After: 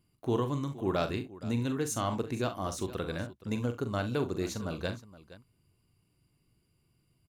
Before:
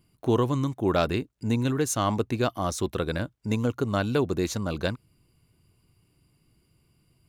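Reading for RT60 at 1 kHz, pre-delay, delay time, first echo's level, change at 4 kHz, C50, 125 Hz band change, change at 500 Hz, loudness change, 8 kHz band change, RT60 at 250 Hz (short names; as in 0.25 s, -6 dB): none, none, 42 ms, -9.0 dB, -6.5 dB, none, -6.5 dB, -6.5 dB, -6.5 dB, -6.5 dB, none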